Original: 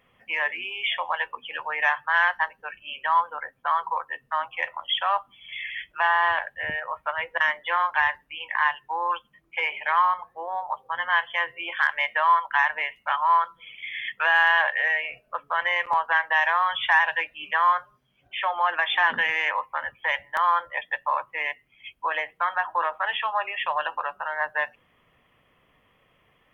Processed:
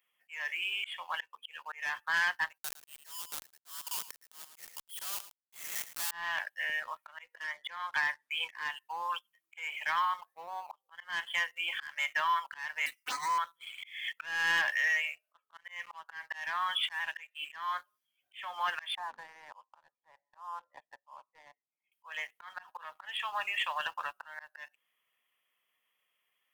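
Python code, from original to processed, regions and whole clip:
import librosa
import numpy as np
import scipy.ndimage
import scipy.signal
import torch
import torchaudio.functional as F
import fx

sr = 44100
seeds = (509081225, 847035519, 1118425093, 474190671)

y = fx.chain(x, sr, fx.schmitt(flips_db=-32.0),
    fx.echo_single(ms=109, db=-23.0), at=(2.58, 6.11))
y = fx.chain(y, sr, fx.air_absorb(metres=55.0),
    fx.notch(hz=2800.0, q=5.3),
    fx.band_squash(depth_pct=100), at=(7.44, 8.49))
y = fx.chain(y, sr, fx.lower_of_two(delay_ms=4.0),
    fx.env_phaser(low_hz=560.0, high_hz=3000.0, full_db=-23.0), at=(12.86, 13.38))
y = fx.chain(y, sr, fx.highpass(hz=480.0, slope=12),
    fx.high_shelf(hz=3800.0, db=-4.5),
    fx.auto_swell(attack_ms=330.0), at=(15.05, 17.39))
y = fx.chain(y, sr, fx.ladder_lowpass(hz=1100.0, resonance_pct=40),
    fx.peak_eq(hz=250.0, db=4.5, octaves=1.6), at=(18.95, 21.92))
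y = np.diff(y, prepend=0.0)
y = fx.leveller(y, sr, passes=2)
y = fx.auto_swell(y, sr, attack_ms=306.0)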